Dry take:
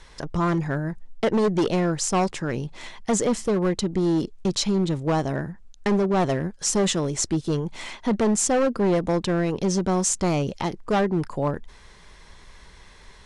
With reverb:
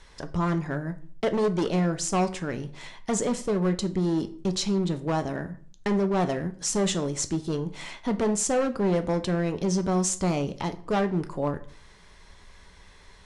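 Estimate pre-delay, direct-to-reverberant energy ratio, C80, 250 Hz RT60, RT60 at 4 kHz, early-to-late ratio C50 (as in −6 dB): 5 ms, 8.5 dB, 20.0 dB, 0.60 s, 0.35 s, 16.0 dB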